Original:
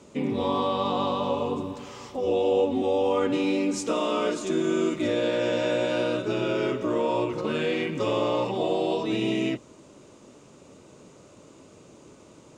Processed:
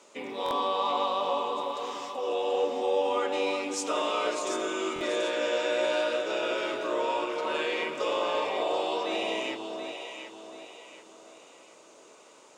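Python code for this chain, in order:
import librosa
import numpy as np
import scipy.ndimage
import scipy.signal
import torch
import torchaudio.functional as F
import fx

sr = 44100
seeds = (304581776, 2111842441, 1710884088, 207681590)

p1 = scipy.signal.sosfilt(scipy.signal.butter(2, 640.0, 'highpass', fs=sr, output='sos'), x)
p2 = 10.0 ** (-26.5 / 20.0) * np.tanh(p1 / 10.0 ** (-26.5 / 20.0))
p3 = p1 + (p2 * 10.0 ** (-11.0 / 20.0))
p4 = fx.echo_alternate(p3, sr, ms=367, hz=1100.0, feedback_pct=61, wet_db=-3)
p5 = fx.buffer_glitch(p4, sr, at_s=(0.44, 4.94), block=1024, repeats=2)
y = p5 * 10.0 ** (-1.5 / 20.0)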